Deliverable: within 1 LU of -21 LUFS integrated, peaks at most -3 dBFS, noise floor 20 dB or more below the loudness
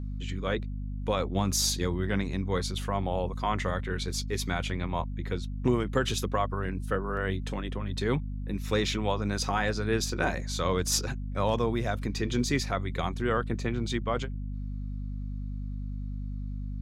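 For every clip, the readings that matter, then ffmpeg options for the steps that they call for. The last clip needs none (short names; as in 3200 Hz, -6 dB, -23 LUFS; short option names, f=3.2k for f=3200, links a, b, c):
hum 50 Hz; harmonics up to 250 Hz; hum level -32 dBFS; loudness -30.5 LUFS; peak -13.0 dBFS; loudness target -21.0 LUFS
-> -af "bandreject=f=50:t=h:w=6,bandreject=f=100:t=h:w=6,bandreject=f=150:t=h:w=6,bandreject=f=200:t=h:w=6,bandreject=f=250:t=h:w=6"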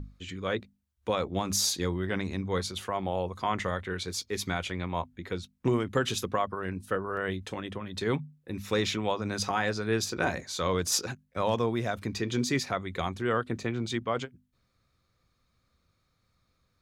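hum none; loudness -31.0 LUFS; peak -14.0 dBFS; loudness target -21.0 LUFS
-> -af "volume=10dB"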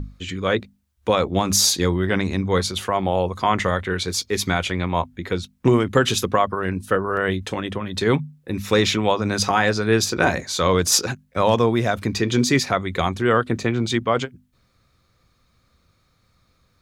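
loudness -21.0 LUFS; peak -4.0 dBFS; noise floor -64 dBFS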